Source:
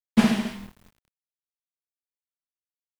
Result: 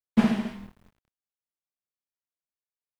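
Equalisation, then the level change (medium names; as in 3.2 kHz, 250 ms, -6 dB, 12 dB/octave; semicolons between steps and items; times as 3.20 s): treble shelf 2.9 kHz -10.5 dB; -2.0 dB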